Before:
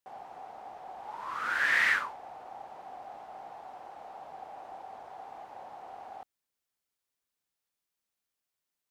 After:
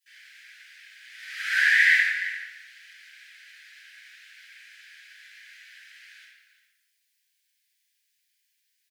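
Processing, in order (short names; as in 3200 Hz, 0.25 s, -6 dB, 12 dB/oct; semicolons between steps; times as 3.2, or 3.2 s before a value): steep high-pass 1600 Hz 96 dB/oct; compressor, threshold -31 dBFS, peak gain reduction 9 dB; on a send: echo 0.342 s -14 dB; on the sum: shoebox room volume 540 m³, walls mixed, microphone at 8.6 m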